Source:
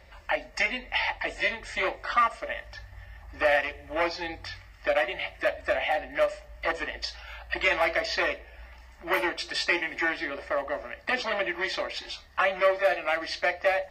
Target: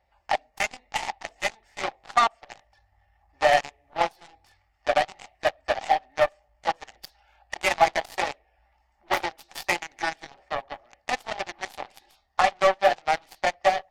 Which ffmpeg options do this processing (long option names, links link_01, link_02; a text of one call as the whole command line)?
ffmpeg -i in.wav -af "aeval=exprs='0.299*(cos(1*acos(clip(val(0)/0.299,-1,1)))-cos(1*PI/2))+0.00596*(cos(6*acos(clip(val(0)/0.299,-1,1)))-cos(6*PI/2))+0.0473*(cos(7*acos(clip(val(0)/0.299,-1,1)))-cos(7*PI/2))':channel_layout=same,equalizer=frequency=790:width_type=o:width=0.43:gain=14" out.wav